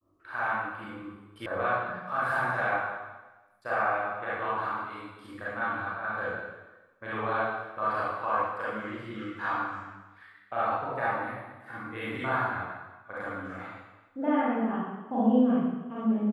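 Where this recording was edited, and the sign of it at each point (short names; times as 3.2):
1.46 sound cut off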